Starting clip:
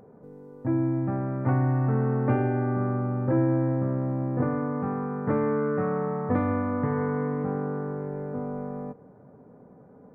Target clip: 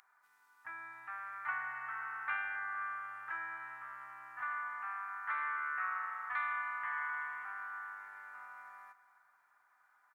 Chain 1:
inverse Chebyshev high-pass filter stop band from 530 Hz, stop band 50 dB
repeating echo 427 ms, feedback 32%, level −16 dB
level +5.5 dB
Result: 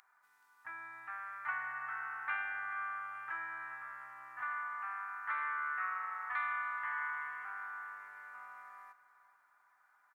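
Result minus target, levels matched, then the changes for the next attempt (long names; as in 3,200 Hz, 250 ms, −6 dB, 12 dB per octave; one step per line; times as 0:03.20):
echo 164 ms late
change: repeating echo 263 ms, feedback 32%, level −16 dB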